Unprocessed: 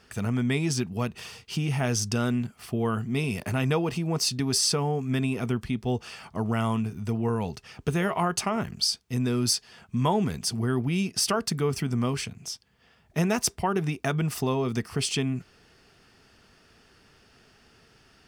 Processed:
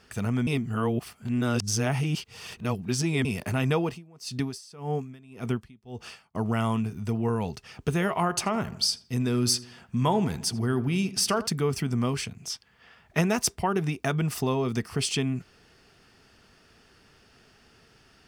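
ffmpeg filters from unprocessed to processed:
ffmpeg -i in.wav -filter_complex "[0:a]asettb=1/sr,asplit=3[link_01][link_02][link_03];[link_01]atrim=end=3.844[link_04];[link_02]atrim=start=3.84:end=6.35,asetpts=PTS-STARTPTS,afade=type=in:duration=0.004:curve=qsin,afade=type=out:start_time=2.506:duration=0.004:curve=qsin,aeval=exprs='val(0)*pow(10,-26*(0.5-0.5*cos(2*PI*1.8*n/s))/20)':channel_layout=same[link_05];[link_03]atrim=start=6.346[link_06];[link_04][link_05]acrossfade=duration=0.004:curve1=hsin:curve2=qsin[link_07];[link_07][link_06]acrossfade=duration=0.004:curve1=qsin:curve2=hsin,asettb=1/sr,asplit=3[link_08][link_09][link_10];[link_08]atrim=end=8.204[link_11];[link_09]atrim=start=8.2:end=11.47,asetpts=PTS-STARTPTS,afade=type=in:duration=0.004:curve=qsin,afade=type=out:start_time=3.266:duration=0.004:curve=qsin,asplit=2[link_12][link_13];[link_13]adelay=82,lowpass=frequency=2200:poles=1,volume=-15.5dB,asplit=2[link_14][link_15];[link_15]adelay=82,lowpass=frequency=2200:poles=1,volume=0.5,asplit=2[link_16][link_17];[link_17]adelay=82,lowpass=frequency=2200:poles=1,volume=0.5,asplit=2[link_18][link_19];[link_19]adelay=82,lowpass=frequency=2200:poles=1,volume=0.5,asplit=2[link_20][link_21];[link_21]adelay=82,lowpass=frequency=2200:poles=1,volume=0.5[link_22];[link_12][link_14][link_16][link_18][link_20][link_22]amix=inputs=6:normalize=0,atrim=end_sample=144207[link_23];[link_10]atrim=start=11.466[link_24];[link_11][link_23]acrossfade=duration=0.004:curve1=hsin:curve2=qsin[link_25];[link_25][link_24]acrossfade=duration=0.004:curve1=qsin:curve2=hsin,asettb=1/sr,asplit=3[link_26][link_27][link_28];[link_26]atrim=end=12.504[link_29];[link_27]atrim=start=12.5:end=13.21,asetpts=PTS-STARTPTS,afade=type=in:duration=0.004:curve=qsin,afade=type=out:start_time=0.706:duration=0.004:curve=qsin,equalizer=frequency=1600:width=0.5:gain=8.5[link_30];[link_28]atrim=start=13.206[link_31];[link_29][link_30]acrossfade=duration=0.004:curve1=hsin:curve2=qsin[link_32];[link_32][link_31]acrossfade=duration=0.004:curve1=qsin:curve2=hsin,asplit=3[link_33][link_34][link_35];[link_33]atrim=end=0.472[link_36];[link_34]atrim=start=0.468:end=3.252,asetpts=PTS-STARTPTS,areverse[link_37];[link_35]atrim=start=3.248[link_38];[link_36][link_37]acrossfade=duration=0.004:curve1=hsin:curve2=hsin[link_39];[link_39][link_38]acrossfade=duration=0.004:curve1=hsin:curve2=hsin" out.wav

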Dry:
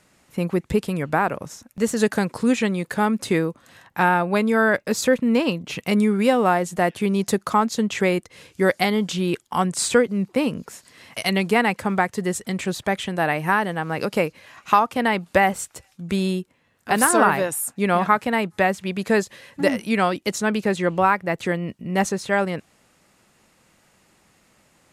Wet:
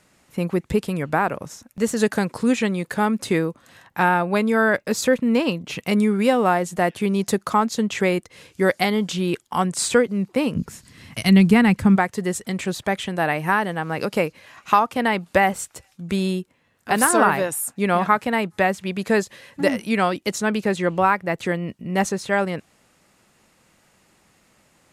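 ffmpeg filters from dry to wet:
ffmpeg -i in.wav -filter_complex "[0:a]asplit=3[link_01][link_02][link_03];[link_01]afade=type=out:start_time=10.55:duration=0.02[link_04];[link_02]asubboost=boost=7:cutoff=210,afade=type=in:start_time=10.55:duration=0.02,afade=type=out:start_time=11.95:duration=0.02[link_05];[link_03]afade=type=in:start_time=11.95:duration=0.02[link_06];[link_04][link_05][link_06]amix=inputs=3:normalize=0" out.wav

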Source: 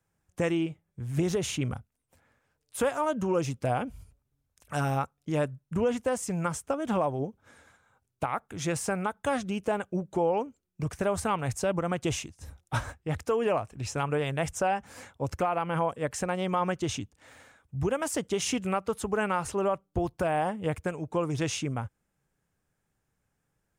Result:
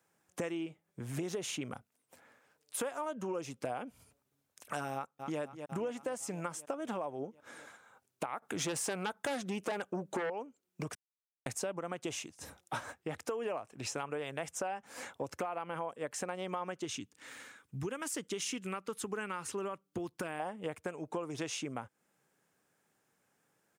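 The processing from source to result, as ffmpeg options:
ffmpeg -i in.wav -filter_complex "[0:a]asplit=2[link_01][link_02];[link_02]afade=type=in:start_time=4.94:duration=0.01,afade=type=out:start_time=5.4:duration=0.01,aecho=0:1:250|500|750|1000|1250|1500|1750|2000|2250:0.211349|0.147944|0.103561|0.0724927|0.0507449|0.0355214|0.024865|0.0174055|0.0121838[link_03];[link_01][link_03]amix=inputs=2:normalize=0,asettb=1/sr,asplit=3[link_04][link_05][link_06];[link_04]atrim=end=8.424[link_07];[link_05]atrim=start=8.42:end=10.3,asetpts=PTS-STARTPTS,afade=type=in:duration=0.004:curve=qsin,afade=type=out:start_time=1.876:duration=0.004:curve=qsin,aeval=exprs='0.141*sin(PI/2*2.24*val(0)/0.141)':channel_layout=same[link_08];[link_06]atrim=start=10.296[link_09];[link_07][link_08]acrossfade=duration=0.004:curve1=hsin:curve2=qsin[link_10];[link_10][link_09]acrossfade=duration=0.004:curve1=qsin:curve2=hsin,asettb=1/sr,asplit=3[link_11][link_12][link_13];[link_11]atrim=end=16.854[link_14];[link_12]atrim=start=16.85:end=20.4,asetpts=PTS-STARTPTS,afade=type=in:duration=0.004:curve=qsin,afade=type=out:start_time=3.546:duration=0.004:curve=qsin,equalizer=frequency=680:width_type=o:width=0.93:gain=-12[link_15];[link_13]atrim=start=20.396[link_16];[link_14][link_15]acrossfade=duration=0.004:curve1=hsin:curve2=qsin[link_17];[link_17][link_16]acrossfade=duration=0.004:curve1=qsin:curve2=hsin,asplit=3[link_18][link_19][link_20];[link_18]atrim=end=10.95,asetpts=PTS-STARTPTS,afade=type=out:start_time=10.946:duration=0.004:curve=hsin[link_21];[link_19]atrim=start=10.95:end=11.46,asetpts=PTS-STARTPTS,volume=0[link_22];[link_20]atrim=start=11.46,asetpts=PTS-STARTPTS,afade=type=in:duration=0.004:curve=hsin[link_23];[link_21][link_22][link_23]concat=n=3:v=0:a=1,highpass=250,acompressor=threshold=-43dB:ratio=4,volume=5.5dB" out.wav

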